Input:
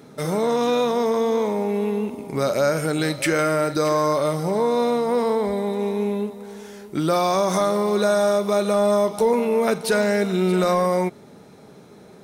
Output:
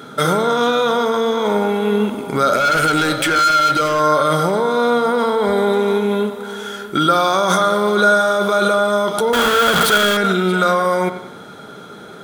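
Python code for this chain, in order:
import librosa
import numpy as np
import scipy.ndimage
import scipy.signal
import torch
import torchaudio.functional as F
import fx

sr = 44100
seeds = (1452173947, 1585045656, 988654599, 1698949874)

p1 = fx.clip_1bit(x, sr, at=(9.33, 10.17))
p2 = fx.low_shelf(p1, sr, hz=170.0, db=-5.5)
p3 = fx.notch(p2, sr, hz=5400.0, q=16.0)
p4 = fx.over_compress(p3, sr, threshold_db=-25.0, ratio=-0.5)
p5 = p3 + (p4 * librosa.db_to_amplitude(0.0))
p6 = fx.small_body(p5, sr, hz=(1400.0, 3300.0), ring_ms=25, db=18)
p7 = fx.clip_hard(p6, sr, threshold_db=-13.0, at=(2.56, 4.0))
y = p7 + fx.echo_wet_lowpass(p7, sr, ms=92, feedback_pct=46, hz=3200.0, wet_db=-11.5, dry=0)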